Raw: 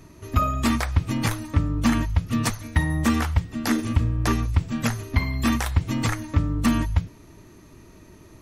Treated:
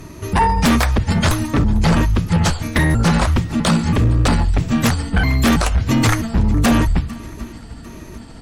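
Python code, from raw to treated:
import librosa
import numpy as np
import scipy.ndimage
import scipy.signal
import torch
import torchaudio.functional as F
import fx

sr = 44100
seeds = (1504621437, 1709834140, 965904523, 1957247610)

y = fx.pitch_trill(x, sr, semitones=-5.5, every_ms=327)
y = fx.echo_swing(y, sr, ms=748, ratio=1.5, feedback_pct=40, wet_db=-23.5)
y = fx.fold_sine(y, sr, drive_db=8, ceiling_db=-9.5)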